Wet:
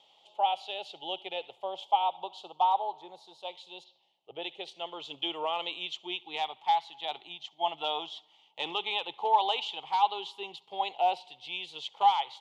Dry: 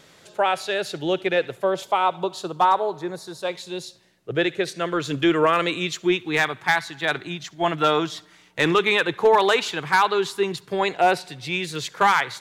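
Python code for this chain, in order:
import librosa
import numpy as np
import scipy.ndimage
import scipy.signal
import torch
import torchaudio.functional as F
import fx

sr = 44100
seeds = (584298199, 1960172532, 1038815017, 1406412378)

y = fx.double_bandpass(x, sr, hz=1600.0, octaves=1.9)
y = fx.env_lowpass_down(y, sr, base_hz=2000.0, full_db=-43.5, at=(3.83, 4.41), fade=0.02)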